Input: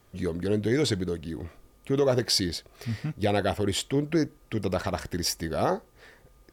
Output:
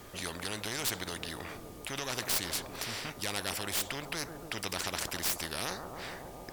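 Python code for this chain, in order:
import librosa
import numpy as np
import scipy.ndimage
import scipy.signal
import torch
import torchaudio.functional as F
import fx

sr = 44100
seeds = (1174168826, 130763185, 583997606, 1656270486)

y = fx.tracing_dist(x, sr, depth_ms=0.054)
y = fx.echo_bbd(y, sr, ms=141, stages=1024, feedback_pct=67, wet_db=-17.0)
y = fx.spectral_comp(y, sr, ratio=4.0)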